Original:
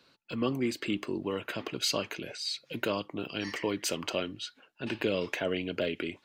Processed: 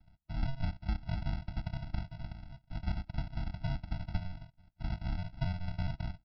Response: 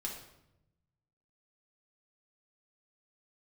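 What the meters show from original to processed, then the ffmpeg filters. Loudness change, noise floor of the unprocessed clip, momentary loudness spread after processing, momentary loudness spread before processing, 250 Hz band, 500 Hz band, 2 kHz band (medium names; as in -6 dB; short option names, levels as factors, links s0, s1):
-6.0 dB, -67 dBFS, 9 LU, 8 LU, -9.5 dB, -20.0 dB, -13.0 dB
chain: -filter_complex "[0:a]highpass=f=69:p=1,bandreject=f=2800:w=5.6,acrossover=split=160|810[s0][s1][s2];[s0]acompressor=threshold=0.00631:ratio=4[s3];[s1]acompressor=threshold=0.02:ratio=4[s4];[s2]acompressor=threshold=0.00447:ratio=4[s5];[s3][s4][s5]amix=inputs=3:normalize=0,aresample=11025,acrusher=samples=41:mix=1:aa=0.000001,aresample=44100,afftfilt=real='re*eq(mod(floor(b*sr/1024/320),2),0)':imag='im*eq(mod(floor(b*sr/1024/320),2),0)':win_size=1024:overlap=0.75,volume=1.41"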